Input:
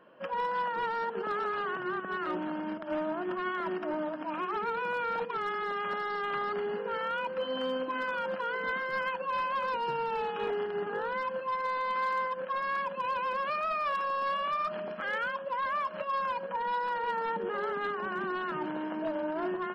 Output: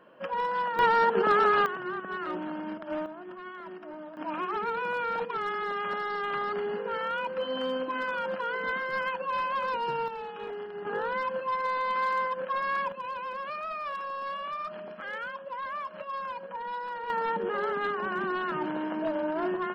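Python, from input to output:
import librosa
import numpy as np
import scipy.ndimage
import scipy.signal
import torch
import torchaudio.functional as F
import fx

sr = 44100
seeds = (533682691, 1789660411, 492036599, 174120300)

y = fx.gain(x, sr, db=fx.steps((0.0, 2.0), (0.79, 10.0), (1.66, -0.5), (3.06, -9.0), (4.17, 1.5), (10.08, -5.5), (10.85, 2.5), (12.92, -4.0), (17.1, 3.0)))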